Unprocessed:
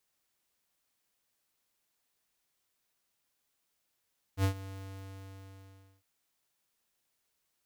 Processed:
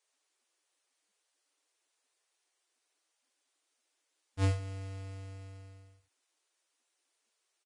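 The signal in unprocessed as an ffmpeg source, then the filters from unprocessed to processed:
-f lavfi -i "aevalsrc='0.0531*(2*lt(mod(96.6*t,1),0.5)-1)':d=1.66:s=44100,afade=t=in:d=0.071,afade=t=out:st=0.071:d=0.092:silence=0.133,afade=t=out:st=0.31:d=1.35"
-af "aecho=1:1:41|74:0.282|0.335" -ar 22050 -c:a libvorbis -b:a 32k

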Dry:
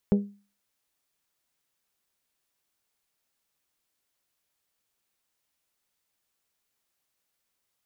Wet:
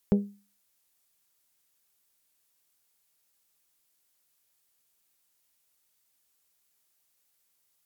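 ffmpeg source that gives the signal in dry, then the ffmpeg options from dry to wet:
-f lavfi -i "aevalsrc='0.178*pow(10,-3*t/0.36)*sin(2*PI*202*t)+0.0794*pow(10,-3*t/0.222)*sin(2*PI*404*t)+0.0355*pow(10,-3*t/0.195)*sin(2*PI*484.8*t)+0.0158*pow(10,-3*t/0.167)*sin(2*PI*606*t)+0.00708*pow(10,-3*t/0.136)*sin(2*PI*808*t)':d=0.89:s=44100"
-af "aemphasis=mode=production:type=cd"

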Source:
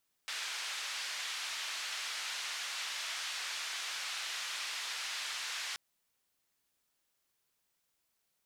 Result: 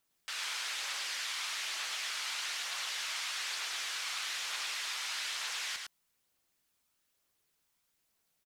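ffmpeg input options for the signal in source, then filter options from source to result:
-f lavfi -i "anoisesrc=c=white:d=5.48:r=44100:seed=1,highpass=f=1300,lowpass=f=4700,volume=-26.9dB"
-filter_complex "[0:a]aphaser=in_gain=1:out_gain=1:delay=1:decay=0.24:speed=1.1:type=triangular,asplit=2[s0][s1];[s1]aecho=0:1:106:0.631[s2];[s0][s2]amix=inputs=2:normalize=0"

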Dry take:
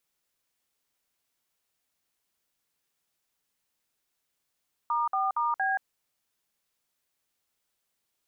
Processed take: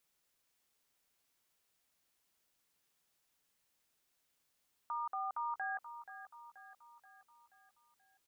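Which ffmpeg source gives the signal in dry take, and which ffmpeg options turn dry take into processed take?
-f lavfi -i "aevalsrc='0.0447*clip(min(mod(t,0.232),0.177-mod(t,0.232))/0.002,0,1)*(eq(floor(t/0.232),0)*(sin(2*PI*941*mod(t,0.232))+sin(2*PI*1209*mod(t,0.232)))+eq(floor(t/0.232),1)*(sin(2*PI*770*mod(t,0.232))+sin(2*PI*1209*mod(t,0.232)))+eq(floor(t/0.232),2)*(sin(2*PI*941*mod(t,0.232))+sin(2*PI*1209*mod(t,0.232)))+eq(floor(t/0.232),3)*(sin(2*PI*770*mod(t,0.232))+sin(2*PI*1633*mod(t,0.232))))':d=0.928:s=44100"
-af "alimiter=level_in=2.66:limit=0.0631:level=0:latency=1:release=29,volume=0.376,aecho=1:1:480|960|1440|1920|2400:0.251|0.131|0.0679|0.0353|0.0184"

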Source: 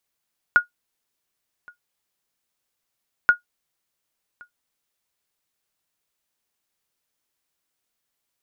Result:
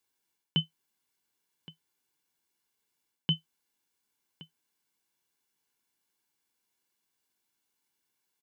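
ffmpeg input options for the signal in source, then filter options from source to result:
-f lavfi -i "aevalsrc='0.531*(sin(2*PI*1440*mod(t,2.73))*exp(-6.91*mod(t,2.73)/0.12)+0.0355*sin(2*PI*1440*max(mod(t,2.73)-1.12,0))*exp(-6.91*max(mod(t,2.73)-1.12,0)/0.12))':d=5.46:s=44100"
-af "aecho=1:1:1.6:0.63,areverse,acompressor=threshold=0.0708:ratio=6,areverse,aeval=exprs='val(0)*sin(2*PI*1600*n/s)':c=same"

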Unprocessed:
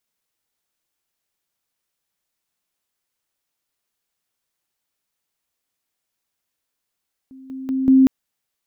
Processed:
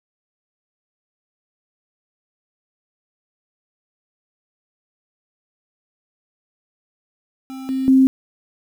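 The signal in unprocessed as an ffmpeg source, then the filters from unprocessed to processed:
-f lavfi -i "aevalsrc='pow(10,(-38.5+10*floor(t/0.19))/20)*sin(2*PI*264*t)':d=0.76:s=44100"
-af "aeval=exprs='val(0)*gte(abs(val(0)),0.0224)':c=same"

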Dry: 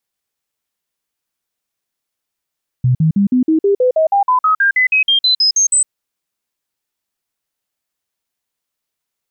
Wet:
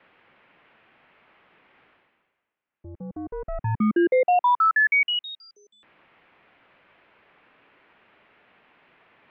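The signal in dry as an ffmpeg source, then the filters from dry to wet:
-f lavfi -i "aevalsrc='0.355*clip(min(mod(t,0.16),0.11-mod(t,0.16))/0.005,0,1)*sin(2*PI*126*pow(2,floor(t/0.16)/3)*mod(t,0.16))':d=3.04:s=44100"
-af "areverse,acompressor=mode=upward:threshold=0.0501:ratio=2.5,areverse,asoftclip=type=tanh:threshold=0.158,highpass=f=470:t=q:w=0.5412,highpass=f=470:t=q:w=1.307,lowpass=f=2900:t=q:w=0.5176,lowpass=f=2900:t=q:w=0.7071,lowpass=f=2900:t=q:w=1.932,afreqshift=-290"

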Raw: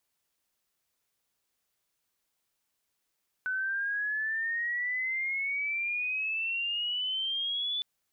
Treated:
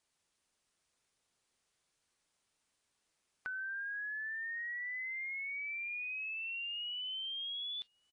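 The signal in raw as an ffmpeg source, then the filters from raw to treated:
-f lavfi -i "aevalsrc='pow(10,(-28.5-0.5*t/4.36)/20)*sin(2*PI*1500*4.36/log(3500/1500)*(exp(log(3500/1500)*t/4.36)-1))':d=4.36:s=44100"
-filter_complex "[0:a]acompressor=threshold=0.00631:ratio=2.5,asplit=2[s0][s1];[s1]adelay=1108,volume=0.0447,highshelf=f=4000:g=-24.9[s2];[s0][s2]amix=inputs=2:normalize=0" -ar 22050 -c:a aac -b:a 32k

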